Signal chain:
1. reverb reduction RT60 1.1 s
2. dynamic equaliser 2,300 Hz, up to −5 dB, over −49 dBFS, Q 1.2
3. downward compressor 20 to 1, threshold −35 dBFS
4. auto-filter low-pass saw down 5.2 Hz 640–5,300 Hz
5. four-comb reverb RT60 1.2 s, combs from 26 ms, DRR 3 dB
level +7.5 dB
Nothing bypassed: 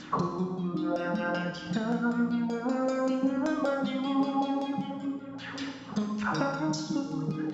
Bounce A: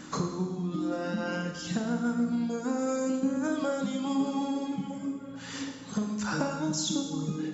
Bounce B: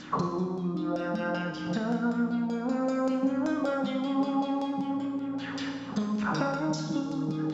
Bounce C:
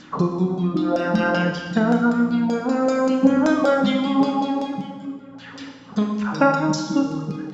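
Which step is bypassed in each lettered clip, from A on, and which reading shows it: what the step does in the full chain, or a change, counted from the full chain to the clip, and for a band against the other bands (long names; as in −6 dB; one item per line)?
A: 4, 4 kHz band +4.5 dB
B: 1, change in momentary loudness spread −2 LU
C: 3, average gain reduction 7.0 dB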